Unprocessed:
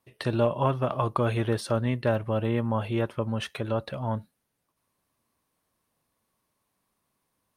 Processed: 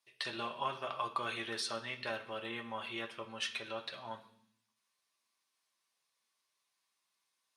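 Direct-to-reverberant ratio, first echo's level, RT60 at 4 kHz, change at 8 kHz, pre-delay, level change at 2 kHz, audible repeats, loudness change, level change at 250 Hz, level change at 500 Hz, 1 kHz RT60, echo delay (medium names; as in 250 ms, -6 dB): 2.0 dB, no echo, 0.85 s, -1.5 dB, 3 ms, -3.0 dB, no echo, -11.5 dB, -19.0 dB, -16.0 dB, 0.65 s, no echo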